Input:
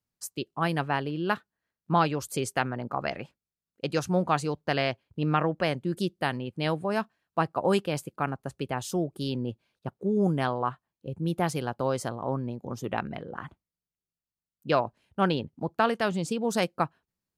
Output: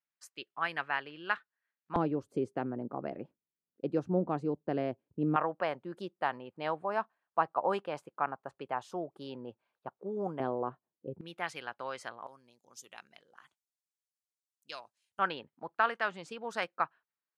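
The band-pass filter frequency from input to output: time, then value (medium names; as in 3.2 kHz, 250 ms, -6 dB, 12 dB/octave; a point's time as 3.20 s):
band-pass filter, Q 1.3
1.8 kHz
from 1.96 s 320 Hz
from 5.36 s 970 Hz
from 10.40 s 390 Hz
from 11.21 s 2 kHz
from 12.27 s 7.3 kHz
from 15.19 s 1.5 kHz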